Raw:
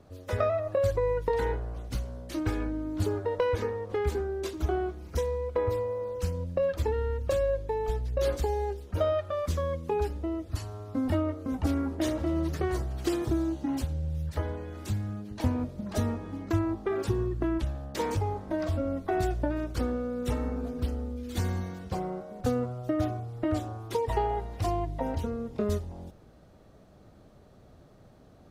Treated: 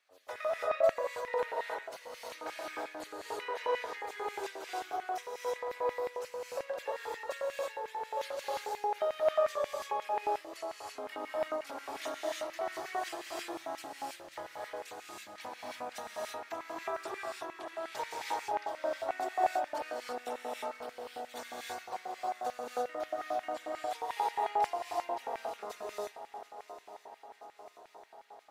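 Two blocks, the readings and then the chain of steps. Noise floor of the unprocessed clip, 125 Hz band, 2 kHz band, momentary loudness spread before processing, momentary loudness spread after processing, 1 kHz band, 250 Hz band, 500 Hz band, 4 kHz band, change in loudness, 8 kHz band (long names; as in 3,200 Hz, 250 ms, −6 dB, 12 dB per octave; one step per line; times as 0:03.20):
−55 dBFS, below −35 dB, +0.5 dB, 6 LU, 13 LU, +1.5 dB, −20.0 dB, −5.5 dB, −0.5 dB, −6.0 dB, −2.5 dB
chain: feedback echo with a long and a short gap by turns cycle 982 ms, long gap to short 3 to 1, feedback 63%, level −16 dB
reverb whose tail is shaped and stops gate 360 ms rising, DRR −4.5 dB
auto-filter high-pass square 5.6 Hz 760–2,100 Hz
level −8.5 dB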